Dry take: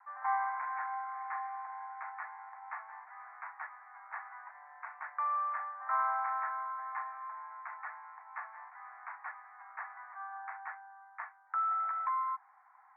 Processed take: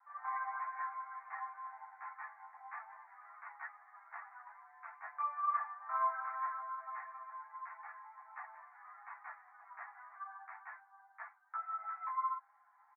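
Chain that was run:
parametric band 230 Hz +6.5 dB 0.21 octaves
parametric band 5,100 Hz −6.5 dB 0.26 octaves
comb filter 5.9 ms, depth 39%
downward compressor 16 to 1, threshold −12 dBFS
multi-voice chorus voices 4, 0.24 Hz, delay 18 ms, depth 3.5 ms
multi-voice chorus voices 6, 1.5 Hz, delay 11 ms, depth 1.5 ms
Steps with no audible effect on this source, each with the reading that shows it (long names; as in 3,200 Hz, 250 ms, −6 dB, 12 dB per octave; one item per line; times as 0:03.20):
parametric band 230 Hz: nothing at its input below 570 Hz
parametric band 5,100 Hz: nothing at its input above 2,300 Hz
downward compressor, threshold −12 dBFS: peak of its input −19.0 dBFS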